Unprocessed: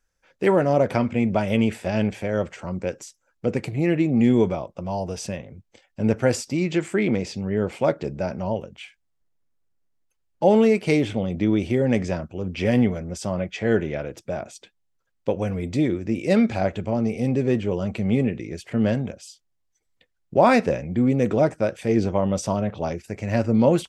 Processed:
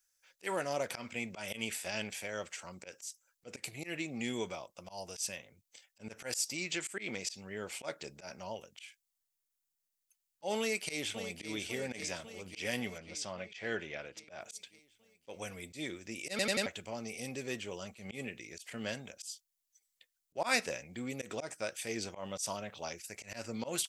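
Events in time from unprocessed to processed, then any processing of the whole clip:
10.59–11.49 echo throw 0.55 s, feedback 65%, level -9.5 dB
12.98–14.41 LPF 4500 Hz
16.3 stutter in place 0.09 s, 4 plays
whole clip: pre-emphasis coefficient 0.97; auto swell 0.106 s; gain +5.5 dB

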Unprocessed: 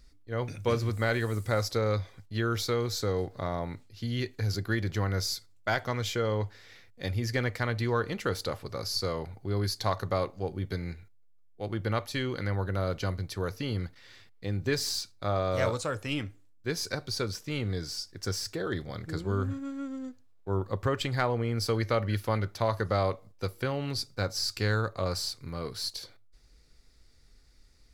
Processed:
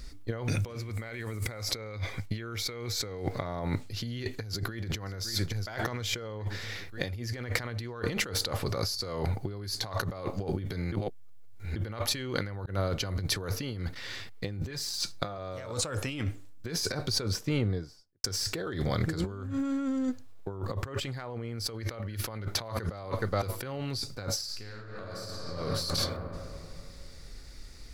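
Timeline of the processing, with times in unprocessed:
0.75–3.45 bell 2200 Hz +11 dB 0.22 oct
4.35–4.96 echo throw 0.56 s, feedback 50%, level -12.5 dB
10.92–11.76 reverse
12.66–13.5 fade in equal-power
14.7–15.38 comb 5.8 ms, depth 46%
16.69–18.24 studio fade out
22.21–23 echo throw 0.42 s, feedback 20%, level -14.5 dB
24.31–25.55 reverb throw, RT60 2.4 s, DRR -2.5 dB
whole clip: negative-ratio compressor -40 dBFS, ratio -1; gain +5.5 dB

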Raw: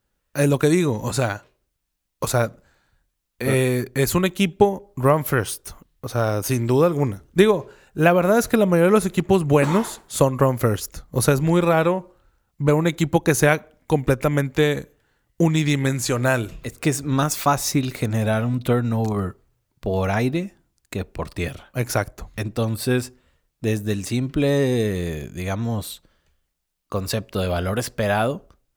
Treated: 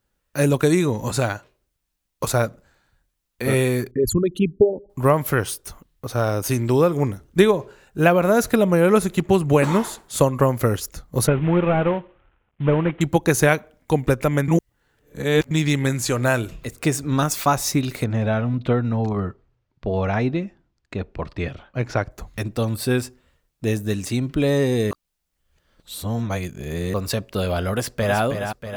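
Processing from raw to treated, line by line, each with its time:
3.91–4.9 formant sharpening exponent 3
11.27–13.01 CVSD 16 kbps
14.48–15.51 reverse
18.04–22.11 air absorption 170 m
24.91–26.94 reverse
27.69–28.2 echo throw 0.32 s, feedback 60%, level -7 dB

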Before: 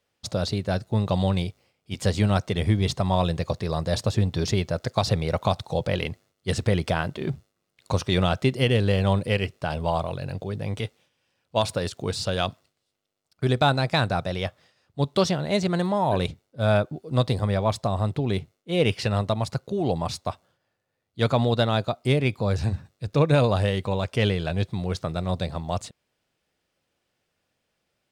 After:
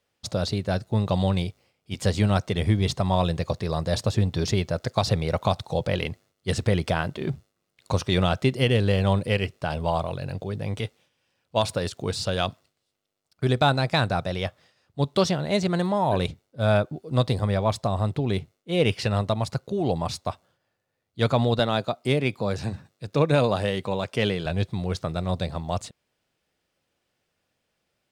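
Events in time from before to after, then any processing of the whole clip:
21.59–24.46 HPF 140 Hz

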